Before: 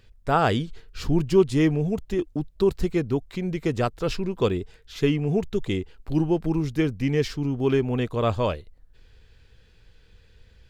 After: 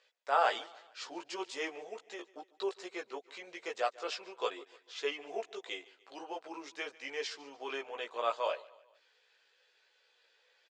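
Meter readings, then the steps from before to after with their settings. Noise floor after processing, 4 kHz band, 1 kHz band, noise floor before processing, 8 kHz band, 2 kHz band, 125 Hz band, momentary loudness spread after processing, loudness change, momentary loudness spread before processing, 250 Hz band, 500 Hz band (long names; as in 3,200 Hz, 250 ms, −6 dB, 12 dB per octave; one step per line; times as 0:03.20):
−72 dBFS, −5.5 dB, −5.5 dB, −56 dBFS, −6.5 dB, −5.5 dB, below −40 dB, 14 LU, −13.5 dB, 8 LU, −26.0 dB, −13.5 dB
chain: high-pass filter 560 Hz 24 dB per octave
multi-voice chorus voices 6, 0.39 Hz, delay 16 ms, depth 2.1 ms
Butterworth low-pass 7,800 Hz 36 dB per octave
on a send: repeating echo 147 ms, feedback 47%, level −21.5 dB
on the sum: level −2.5 dB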